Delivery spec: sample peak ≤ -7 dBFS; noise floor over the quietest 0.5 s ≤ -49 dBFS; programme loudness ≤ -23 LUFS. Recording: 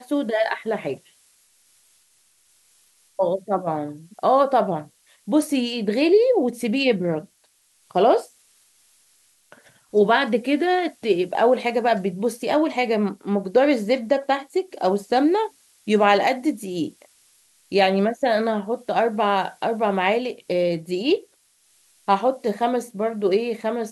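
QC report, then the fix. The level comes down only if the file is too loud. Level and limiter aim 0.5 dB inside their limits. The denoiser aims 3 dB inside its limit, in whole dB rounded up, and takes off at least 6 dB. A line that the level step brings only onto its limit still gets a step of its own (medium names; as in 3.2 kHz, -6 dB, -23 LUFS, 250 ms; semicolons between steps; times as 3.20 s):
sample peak -4.5 dBFS: fail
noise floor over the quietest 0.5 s -62 dBFS: pass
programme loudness -21.5 LUFS: fail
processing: trim -2 dB; peak limiter -7.5 dBFS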